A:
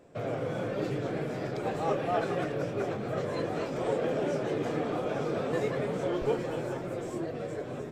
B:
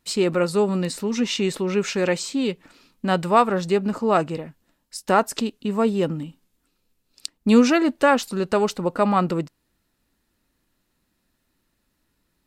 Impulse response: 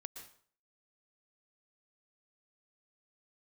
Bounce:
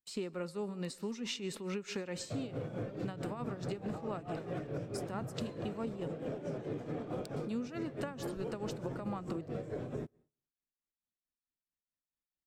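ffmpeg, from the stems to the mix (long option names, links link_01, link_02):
-filter_complex "[0:a]lowshelf=frequency=360:gain=10.5,alimiter=limit=-24dB:level=0:latency=1:release=145,adelay=2150,volume=-1dB,asplit=2[link_01][link_02];[link_02]volume=-20.5dB[link_03];[1:a]agate=range=-23dB:threshold=-44dB:ratio=16:detection=peak,volume=-10dB,asplit=2[link_04][link_05];[link_05]volume=-6dB[link_06];[2:a]atrim=start_sample=2205[link_07];[link_03][link_06]amix=inputs=2:normalize=0[link_08];[link_08][link_07]afir=irnorm=-1:irlink=0[link_09];[link_01][link_04][link_09]amix=inputs=3:normalize=0,acrossover=split=270[link_10][link_11];[link_11]acompressor=threshold=-29dB:ratio=6[link_12];[link_10][link_12]amix=inputs=2:normalize=0,tremolo=f=4.6:d=0.75,acompressor=threshold=-35dB:ratio=6"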